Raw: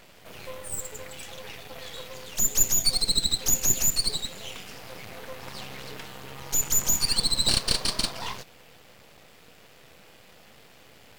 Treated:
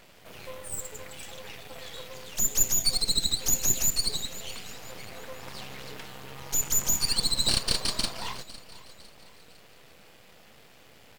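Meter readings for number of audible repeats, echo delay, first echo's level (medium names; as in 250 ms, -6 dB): 3, 505 ms, -18.0 dB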